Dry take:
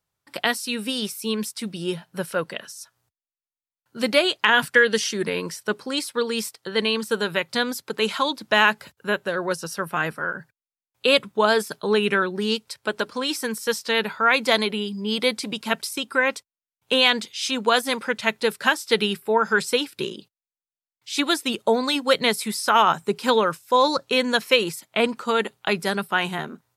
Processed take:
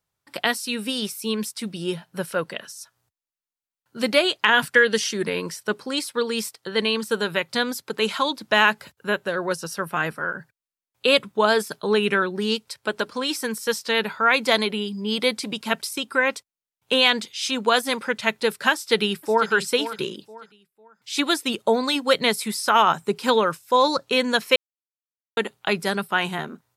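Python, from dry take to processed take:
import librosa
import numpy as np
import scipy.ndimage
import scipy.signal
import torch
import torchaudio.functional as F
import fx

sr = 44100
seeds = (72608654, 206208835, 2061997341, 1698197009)

y = fx.echo_throw(x, sr, start_s=18.73, length_s=0.78, ms=500, feedback_pct=30, wet_db=-12.0)
y = fx.edit(y, sr, fx.silence(start_s=24.56, length_s=0.81), tone=tone)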